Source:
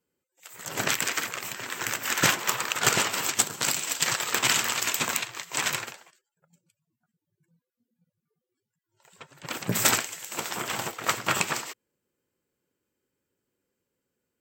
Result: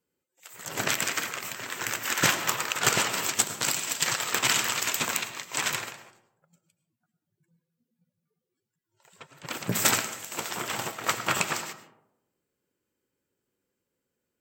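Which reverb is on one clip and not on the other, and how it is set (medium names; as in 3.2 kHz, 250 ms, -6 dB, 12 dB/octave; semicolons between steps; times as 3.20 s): algorithmic reverb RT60 0.85 s, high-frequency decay 0.35×, pre-delay 65 ms, DRR 11.5 dB; trim -1 dB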